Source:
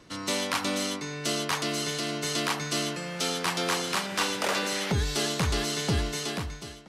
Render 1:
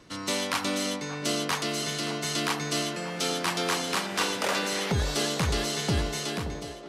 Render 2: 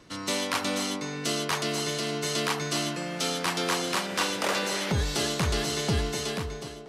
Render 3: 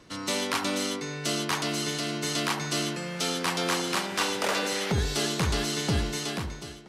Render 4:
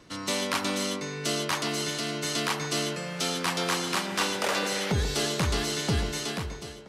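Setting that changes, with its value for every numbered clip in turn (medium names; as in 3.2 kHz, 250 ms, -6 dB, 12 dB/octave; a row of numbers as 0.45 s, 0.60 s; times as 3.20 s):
band-passed feedback delay, time: 576 ms, 252 ms, 69 ms, 138 ms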